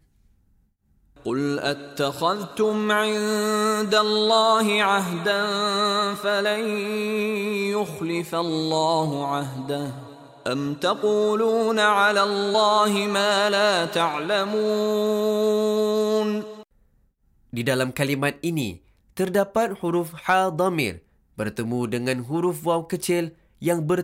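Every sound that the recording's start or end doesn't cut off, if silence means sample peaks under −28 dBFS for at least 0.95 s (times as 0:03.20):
0:01.26–0:16.45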